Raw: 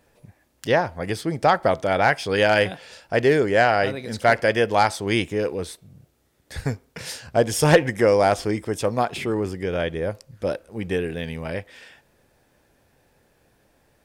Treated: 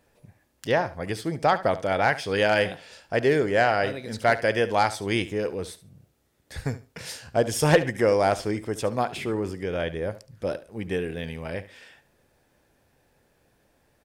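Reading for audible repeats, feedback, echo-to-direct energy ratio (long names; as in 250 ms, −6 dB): 2, 18%, −15.5 dB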